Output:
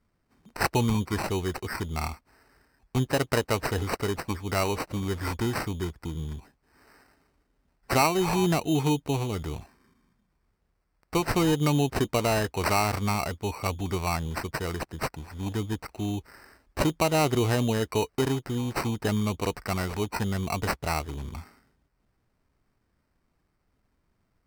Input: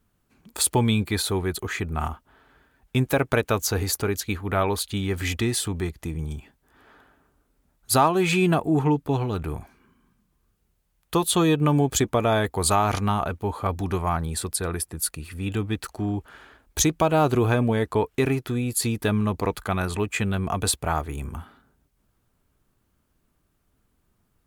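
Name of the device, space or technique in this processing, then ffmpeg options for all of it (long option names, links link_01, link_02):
crushed at another speed: -af "asetrate=22050,aresample=44100,acrusher=samples=26:mix=1:aa=0.000001,asetrate=88200,aresample=44100,volume=-3.5dB"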